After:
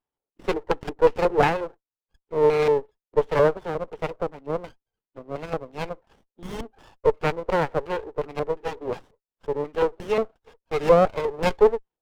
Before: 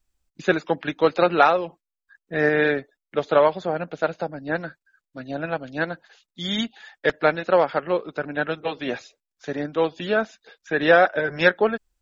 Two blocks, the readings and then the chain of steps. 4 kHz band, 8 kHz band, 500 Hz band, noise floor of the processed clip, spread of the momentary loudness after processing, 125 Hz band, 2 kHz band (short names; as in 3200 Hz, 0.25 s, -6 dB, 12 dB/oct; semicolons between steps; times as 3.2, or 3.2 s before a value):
-8.0 dB, n/a, 0.0 dB, under -85 dBFS, 16 LU, +1.0 dB, -10.0 dB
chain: speaker cabinet 420–3400 Hz, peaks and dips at 430 Hz +9 dB, 620 Hz -6 dB, 910 Hz +8 dB, 1400 Hz -5 dB, 2000 Hz -8 dB, 3100 Hz +5 dB; in parallel at -8 dB: soft clip -10 dBFS, distortion -16 dB; on the sum: LFO low-pass square 2.8 Hz 600–2600 Hz; running maximum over 17 samples; gain -6.5 dB